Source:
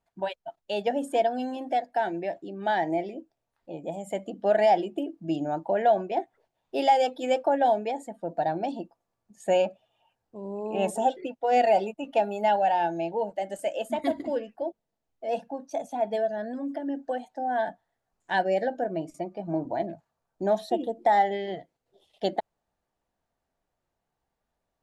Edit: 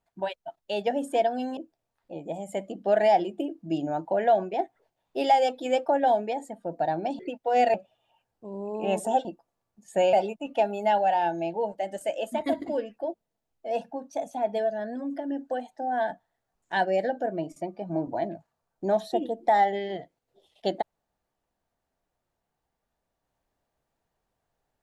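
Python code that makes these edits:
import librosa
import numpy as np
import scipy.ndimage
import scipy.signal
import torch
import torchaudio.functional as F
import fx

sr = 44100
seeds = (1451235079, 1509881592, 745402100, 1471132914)

y = fx.edit(x, sr, fx.cut(start_s=1.57, length_s=1.58),
    fx.swap(start_s=8.77, length_s=0.88, other_s=11.16, other_length_s=0.55), tone=tone)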